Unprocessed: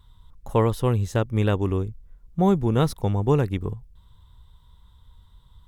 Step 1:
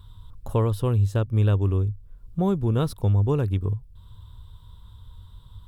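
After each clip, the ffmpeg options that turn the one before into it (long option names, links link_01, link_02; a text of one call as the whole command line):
ffmpeg -i in.wav -af "equalizer=frequency=100:width_type=o:width=0.33:gain=10,equalizer=frequency=800:width_type=o:width=0.33:gain=-5,equalizer=frequency=2000:width_type=o:width=0.33:gain=-9,equalizer=frequency=6300:width_type=o:width=0.33:gain=-6,acompressor=threshold=-41dB:ratio=1.5,volume=5.5dB" out.wav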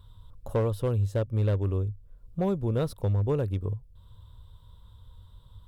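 ffmpeg -i in.wav -af "equalizer=frequency=550:width=2.4:gain=8,asoftclip=type=hard:threshold=-13.5dB,volume=-5.5dB" out.wav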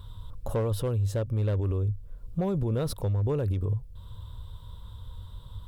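ffmpeg -i in.wav -af "alimiter=level_in=5.5dB:limit=-24dB:level=0:latency=1:release=46,volume=-5.5dB,volume=8.5dB" out.wav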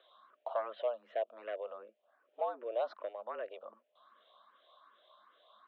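ffmpeg -i in.wav -filter_complex "[0:a]highpass=frequency=400:width_type=q:width=0.5412,highpass=frequency=400:width_type=q:width=1.307,lowpass=frequency=3100:width_type=q:width=0.5176,lowpass=frequency=3100:width_type=q:width=0.7071,lowpass=frequency=3100:width_type=q:width=1.932,afreqshift=110,asplit=2[link_01][link_02];[link_02]afreqshift=2.6[link_03];[link_01][link_03]amix=inputs=2:normalize=1" out.wav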